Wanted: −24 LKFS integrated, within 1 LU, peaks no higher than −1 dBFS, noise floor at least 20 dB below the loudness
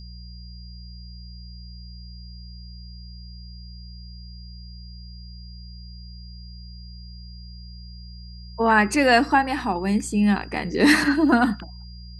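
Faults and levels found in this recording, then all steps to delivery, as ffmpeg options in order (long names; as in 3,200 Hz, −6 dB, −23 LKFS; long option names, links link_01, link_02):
mains hum 60 Hz; hum harmonics up to 180 Hz; level of the hum −38 dBFS; interfering tone 4,800 Hz; level of the tone −47 dBFS; integrated loudness −20.0 LKFS; sample peak −4.0 dBFS; target loudness −24.0 LKFS
→ -af "bandreject=frequency=60:width_type=h:width=4,bandreject=frequency=120:width_type=h:width=4,bandreject=frequency=180:width_type=h:width=4"
-af "bandreject=frequency=4800:width=30"
-af "volume=-4dB"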